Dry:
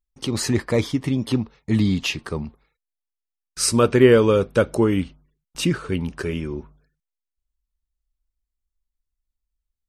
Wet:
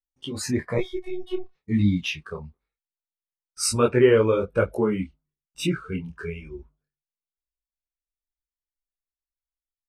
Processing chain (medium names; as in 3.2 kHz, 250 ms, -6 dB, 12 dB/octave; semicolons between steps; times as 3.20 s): 0.78–1.55 s: robot voice 368 Hz; spectral noise reduction 16 dB; detune thickener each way 37 cents